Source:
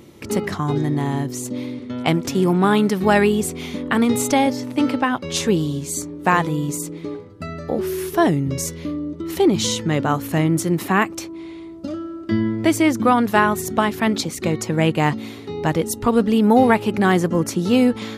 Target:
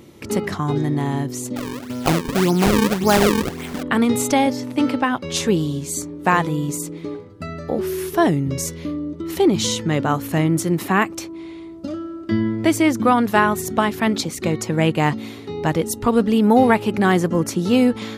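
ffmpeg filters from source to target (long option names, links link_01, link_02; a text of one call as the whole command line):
ffmpeg -i in.wav -filter_complex "[0:a]asettb=1/sr,asplit=3[link_01][link_02][link_03];[link_01]atrim=end=1.564[link_04];[link_02]atrim=start=1.56:end=3.83,asetpts=PTS-STARTPTS,afade=type=in:duration=0.004:curve=qsin,afade=type=out:start_time=2.266:duration=0.004:curve=qsin,acrusher=samples=37:mix=1:aa=0.000001:lfo=1:lforange=59.2:lforate=1.8[link_05];[link_03]atrim=start=3.826[link_06];[link_04][link_05]acrossfade=duration=0.004:curve1=hsin:curve2=qsin[link_07];[link_07][link_06]acrossfade=duration=0.004:curve1=qsin:curve2=hsin" out.wav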